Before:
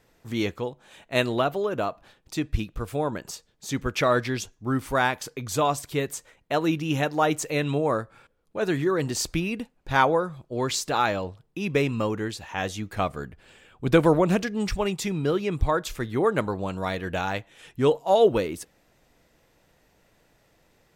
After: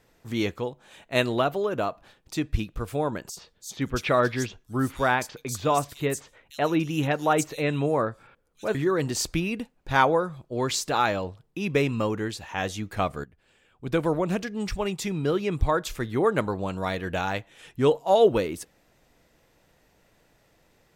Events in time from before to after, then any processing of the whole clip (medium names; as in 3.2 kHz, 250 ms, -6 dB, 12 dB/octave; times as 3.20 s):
3.29–8.75 s: bands offset in time highs, lows 80 ms, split 4 kHz
13.24–15.48 s: fade in, from -13.5 dB